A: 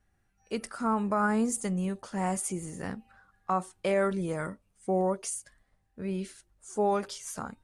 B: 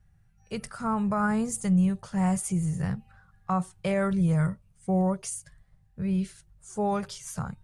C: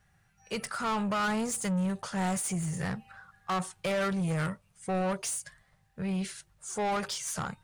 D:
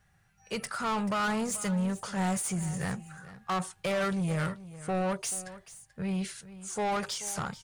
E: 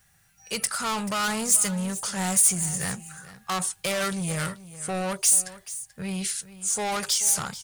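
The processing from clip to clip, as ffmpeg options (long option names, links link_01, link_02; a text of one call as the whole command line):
ffmpeg -i in.wav -af "lowshelf=frequency=200:width_type=q:width=3:gain=10" out.wav
ffmpeg -i in.wav -filter_complex "[0:a]asplit=2[link_01][link_02];[link_02]highpass=frequency=720:poles=1,volume=23dB,asoftclip=type=tanh:threshold=-15.5dB[link_03];[link_01][link_03]amix=inputs=2:normalize=0,lowpass=frequency=8000:poles=1,volume=-6dB,volume=-7.5dB" out.wav
ffmpeg -i in.wav -af "aecho=1:1:435:0.158" out.wav
ffmpeg -i in.wav -af "crystalizer=i=4.5:c=0" out.wav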